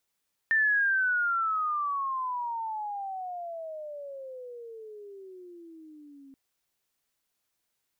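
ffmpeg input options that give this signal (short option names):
-f lavfi -i "aevalsrc='pow(10,(-20.5-27.5*t/5.83)/20)*sin(2*PI*1800*5.83/(-33*log(2)/12)*(exp(-33*log(2)/12*t/5.83)-1))':d=5.83:s=44100"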